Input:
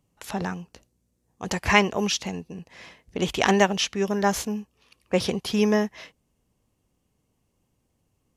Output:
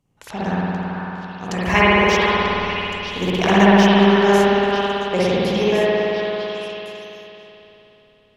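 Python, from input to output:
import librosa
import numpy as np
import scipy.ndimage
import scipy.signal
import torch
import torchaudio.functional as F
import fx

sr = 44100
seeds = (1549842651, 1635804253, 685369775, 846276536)

y = fx.high_shelf(x, sr, hz=11000.0, db=-6.5)
y = fx.backlash(y, sr, play_db=-34.5, at=(1.63, 4.12))
y = fx.echo_stepped(y, sr, ms=470, hz=1300.0, octaves=1.4, feedback_pct=70, wet_db=-2.5)
y = fx.rev_spring(y, sr, rt60_s=3.4, pass_ms=(55,), chirp_ms=45, drr_db=-9.5)
y = y * 10.0 ** (-1.5 / 20.0)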